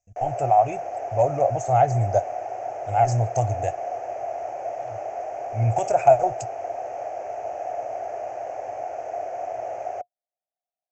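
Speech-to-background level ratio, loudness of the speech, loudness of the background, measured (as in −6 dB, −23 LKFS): 9.0 dB, −22.5 LKFS, −31.5 LKFS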